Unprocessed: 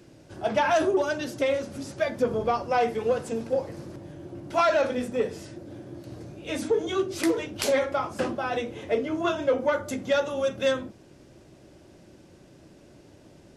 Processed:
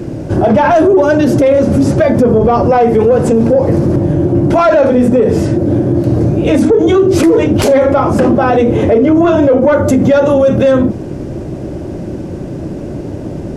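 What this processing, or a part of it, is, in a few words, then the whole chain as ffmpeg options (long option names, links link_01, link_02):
mastering chain: -af "equalizer=frequency=3800:width_type=o:width=0.77:gain=-3,acompressor=threshold=-28dB:ratio=2,asoftclip=type=tanh:threshold=-20dB,tiltshelf=frequency=970:gain=8,alimiter=level_in=25.5dB:limit=-1dB:release=50:level=0:latency=1,volume=-1.5dB"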